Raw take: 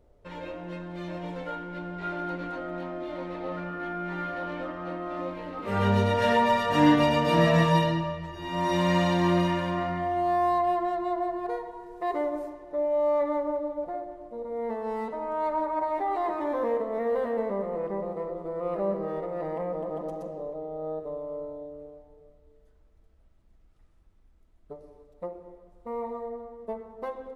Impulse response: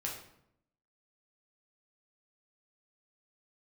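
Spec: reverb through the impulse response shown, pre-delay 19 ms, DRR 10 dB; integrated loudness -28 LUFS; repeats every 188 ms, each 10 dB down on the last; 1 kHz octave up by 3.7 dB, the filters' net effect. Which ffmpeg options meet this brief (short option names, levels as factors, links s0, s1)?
-filter_complex "[0:a]equalizer=f=1000:t=o:g=4.5,aecho=1:1:188|376|564|752:0.316|0.101|0.0324|0.0104,asplit=2[s0][s1];[1:a]atrim=start_sample=2205,adelay=19[s2];[s1][s2]afir=irnorm=-1:irlink=0,volume=0.266[s3];[s0][s3]amix=inputs=2:normalize=0,volume=0.75"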